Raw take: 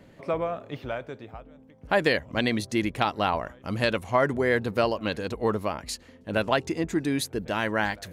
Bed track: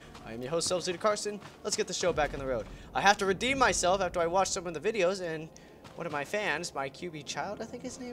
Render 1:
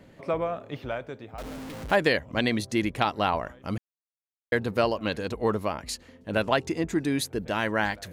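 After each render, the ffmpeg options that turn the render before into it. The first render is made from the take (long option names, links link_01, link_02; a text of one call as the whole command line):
ffmpeg -i in.wav -filter_complex "[0:a]asettb=1/sr,asplit=3[link_01][link_02][link_03];[link_01]atrim=end=1.384[link_04];[link_02]atrim=start=1.38:end=1.96,asetpts=PTS-STARTPTS,afade=type=in:duration=0.004:curve=qsin,afade=type=out:start_time=0.576:duration=0.004:curve=qsin,aeval=exprs='val(0)+0.5*0.0211*sgn(val(0))':channel_layout=same[link_05];[link_03]atrim=start=1.956[link_06];[link_04][link_05]acrossfade=duration=0.004:curve1=hsin:curve2=qsin[link_07];[link_07][link_06]acrossfade=duration=0.004:curve1=qsin:curve2=hsin,asplit=3[link_08][link_09][link_10];[link_08]atrim=end=3.78,asetpts=PTS-STARTPTS,afade=type=out:start_time=3.776:duration=0.004:curve=hsin[link_11];[link_09]atrim=start=3.78:end=4.52,asetpts=PTS-STARTPTS,volume=0[link_12];[link_10]atrim=start=4.52,asetpts=PTS-STARTPTS,afade=type=in:duration=0.004:curve=hsin[link_13];[link_11][link_12][link_13]concat=n=3:v=0:a=1" out.wav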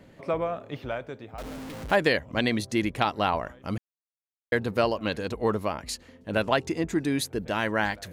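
ffmpeg -i in.wav -af anull out.wav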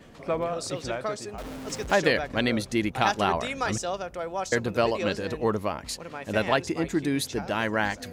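ffmpeg -i in.wav -i bed.wav -filter_complex "[1:a]volume=-4dB[link_01];[0:a][link_01]amix=inputs=2:normalize=0" out.wav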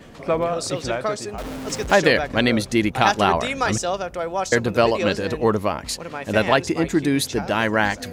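ffmpeg -i in.wav -af "volume=6.5dB,alimiter=limit=-2dB:level=0:latency=1" out.wav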